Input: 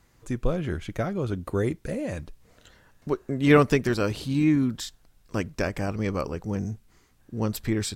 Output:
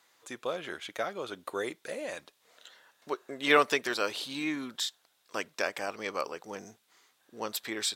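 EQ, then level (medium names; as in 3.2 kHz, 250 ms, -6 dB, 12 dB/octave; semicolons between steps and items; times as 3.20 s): high-pass 620 Hz 12 dB/octave; peaking EQ 3.6 kHz +6.5 dB 0.42 oct; 0.0 dB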